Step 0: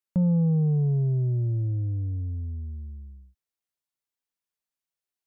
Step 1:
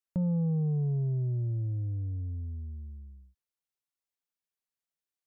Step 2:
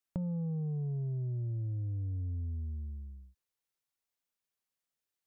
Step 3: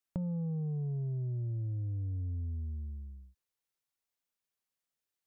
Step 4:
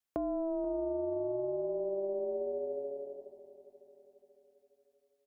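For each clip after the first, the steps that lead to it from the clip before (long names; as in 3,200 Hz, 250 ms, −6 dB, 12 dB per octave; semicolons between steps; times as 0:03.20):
dynamic equaliser 250 Hz, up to −4 dB, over −36 dBFS, Q 1.3; level −4.5 dB
downward compressor, threshold −36 dBFS, peak gain reduction 9 dB; level +2 dB
no processing that can be heard
repeating echo 486 ms, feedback 53%, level −17 dB; pitch vibrato 1 Hz 26 cents; ring modulation 490 Hz; level +3.5 dB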